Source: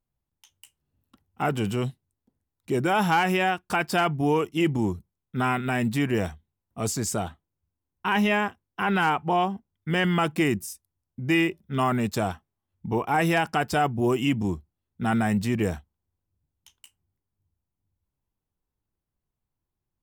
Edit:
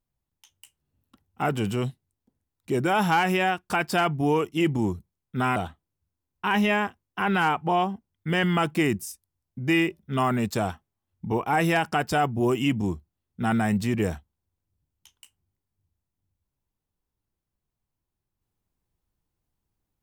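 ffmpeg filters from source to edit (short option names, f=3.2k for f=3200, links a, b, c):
-filter_complex "[0:a]asplit=2[a][b];[a]atrim=end=5.562[c];[b]atrim=start=7.168[d];[c][d]acrossfade=d=0.004:c1=hsin:c2=hsin"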